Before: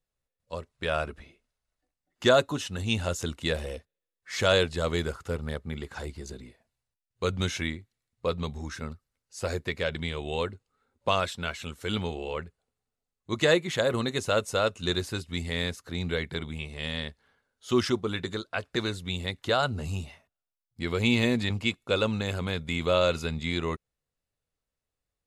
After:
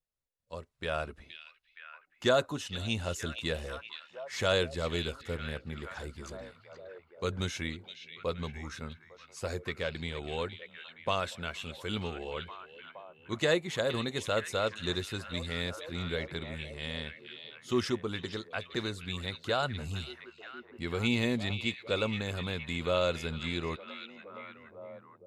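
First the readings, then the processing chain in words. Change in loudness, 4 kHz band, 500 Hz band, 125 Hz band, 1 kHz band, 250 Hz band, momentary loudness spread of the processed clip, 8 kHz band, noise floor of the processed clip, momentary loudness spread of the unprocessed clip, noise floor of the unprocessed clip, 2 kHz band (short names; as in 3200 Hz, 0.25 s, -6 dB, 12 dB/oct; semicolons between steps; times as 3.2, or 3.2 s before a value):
-5.0 dB, -4.0 dB, -5.0 dB, -5.0 dB, -5.0 dB, -5.0 dB, 18 LU, -5.0 dB, -63 dBFS, 14 LU, under -85 dBFS, -4.5 dB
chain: on a send: delay with a stepping band-pass 0.469 s, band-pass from 3200 Hz, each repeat -0.7 oct, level -6 dB; on the sum: AGC gain up to 3.5 dB; gain -8.5 dB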